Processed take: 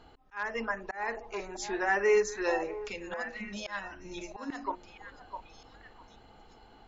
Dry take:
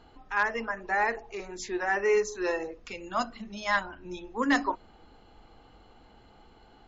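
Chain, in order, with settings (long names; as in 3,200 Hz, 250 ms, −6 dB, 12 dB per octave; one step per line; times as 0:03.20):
mains-hum notches 60/120/180/240/300/360 Hz
volume swells 325 ms
on a send: echo through a band-pass that steps 655 ms, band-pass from 750 Hz, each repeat 1.4 octaves, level −6 dB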